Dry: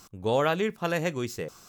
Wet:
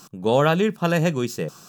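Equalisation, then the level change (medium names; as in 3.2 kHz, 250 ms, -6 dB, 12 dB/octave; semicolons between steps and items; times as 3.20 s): Butterworth band-stop 2.1 kHz, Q 6.8; resonant low shelf 110 Hz -9.5 dB, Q 3; +5.5 dB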